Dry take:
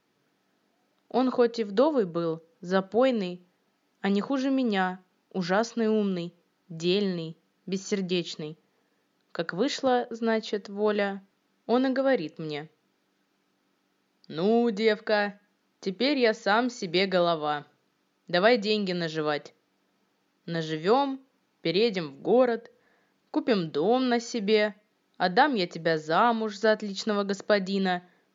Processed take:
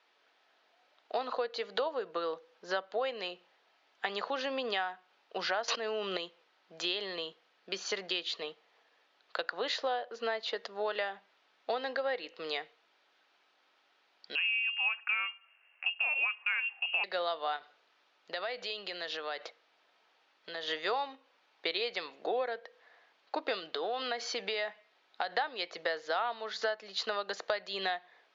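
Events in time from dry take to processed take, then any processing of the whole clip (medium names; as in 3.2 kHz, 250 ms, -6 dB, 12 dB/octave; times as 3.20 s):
5.68–6.17 s: level flattener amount 100%
14.35–17.04 s: frequency inversion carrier 3 kHz
17.56–20.68 s: compression, threshold -35 dBFS
23.59–25.35 s: compression, threshold -26 dBFS
whole clip: Chebyshev band-pass 620–3600 Hz, order 2; tilt EQ +1.5 dB/octave; compression 5:1, threshold -36 dBFS; trim +5 dB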